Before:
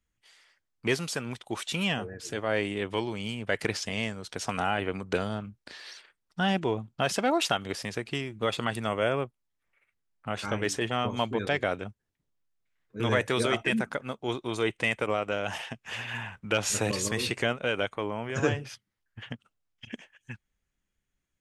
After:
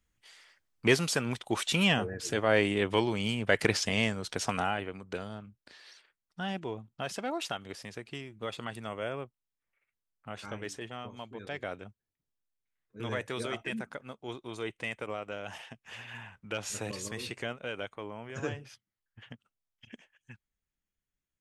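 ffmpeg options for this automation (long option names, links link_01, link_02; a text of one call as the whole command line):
ffmpeg -i in.wav -af "volume=10dB,afade=type=out:start_time=4.26:duration=0.65:silence=0.251189,afade=type=out:start_time=10.41:duration=0.87:silence=0.446684,afade=type=in:start_time=11.28:duration=0.4:silence=0.446684" out.wav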